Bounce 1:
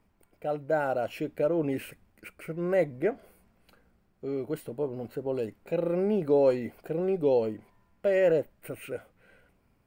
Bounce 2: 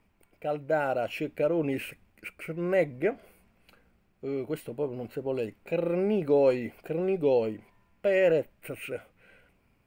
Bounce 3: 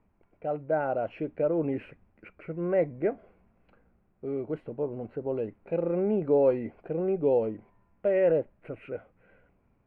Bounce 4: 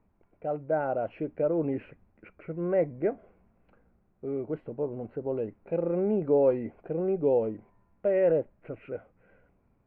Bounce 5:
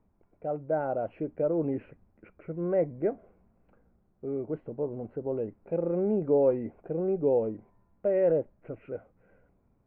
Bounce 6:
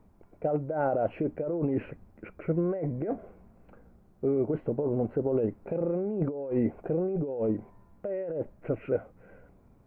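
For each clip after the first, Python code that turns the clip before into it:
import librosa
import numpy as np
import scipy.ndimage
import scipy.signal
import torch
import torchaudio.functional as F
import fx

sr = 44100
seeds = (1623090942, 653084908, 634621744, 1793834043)

y1 = fx.peak_eq(x, sr, hz=2500.0, db=7.0, octaves=0.63)
y2 = scipy.signal.sosfilt(scipy.signal.butter(2, 1300.0, 'lowpass', fs=sr, output='sos'), y1)
y3 = fx.lowpass(y2, sr, hz=2100.0, slope=6)
y4 = fx.high_shelf(y3, sr, hz=2100.0, db=-11.5)
y5 = fx.over_compress(y4, sr, threshold_db=-33.0, ratio=-1.0)
y5 = F.gain(torch.from_numpy(y5), 4.5).numpy()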